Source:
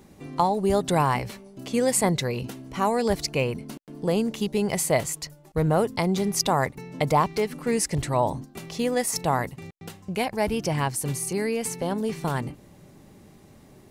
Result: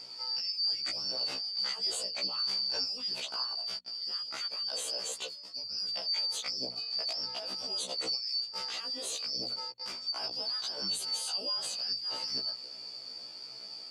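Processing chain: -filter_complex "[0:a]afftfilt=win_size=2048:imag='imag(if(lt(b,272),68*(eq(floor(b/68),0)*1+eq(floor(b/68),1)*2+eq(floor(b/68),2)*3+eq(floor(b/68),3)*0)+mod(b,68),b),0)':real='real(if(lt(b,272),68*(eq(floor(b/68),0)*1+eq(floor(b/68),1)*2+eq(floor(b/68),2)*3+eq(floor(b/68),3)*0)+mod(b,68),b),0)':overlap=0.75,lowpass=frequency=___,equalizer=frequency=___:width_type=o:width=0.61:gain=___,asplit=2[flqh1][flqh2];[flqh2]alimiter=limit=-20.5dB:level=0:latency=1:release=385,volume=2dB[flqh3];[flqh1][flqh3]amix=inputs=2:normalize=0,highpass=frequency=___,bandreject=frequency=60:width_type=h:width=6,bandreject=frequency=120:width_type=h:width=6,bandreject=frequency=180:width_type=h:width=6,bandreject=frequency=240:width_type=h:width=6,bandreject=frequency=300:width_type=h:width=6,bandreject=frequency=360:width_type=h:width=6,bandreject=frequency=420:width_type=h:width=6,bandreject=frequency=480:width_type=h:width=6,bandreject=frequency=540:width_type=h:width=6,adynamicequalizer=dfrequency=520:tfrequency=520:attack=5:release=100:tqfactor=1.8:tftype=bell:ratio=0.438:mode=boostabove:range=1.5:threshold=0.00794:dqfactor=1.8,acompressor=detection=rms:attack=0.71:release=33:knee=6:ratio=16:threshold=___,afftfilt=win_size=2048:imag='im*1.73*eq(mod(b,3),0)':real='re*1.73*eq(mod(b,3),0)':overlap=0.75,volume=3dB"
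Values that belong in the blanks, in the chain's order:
5600, 1700, -3.5, 130, -31dB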